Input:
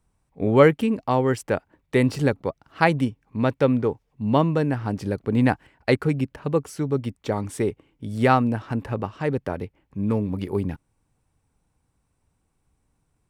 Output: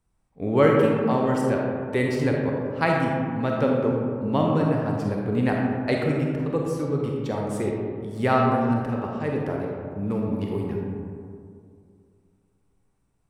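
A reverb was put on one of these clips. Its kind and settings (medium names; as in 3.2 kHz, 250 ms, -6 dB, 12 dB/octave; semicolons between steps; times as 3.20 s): algorithmic reverb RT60 2.3 s, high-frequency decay 0.35×, pre-delay 5 ms, DRR -1.5 dB; trim -5 dB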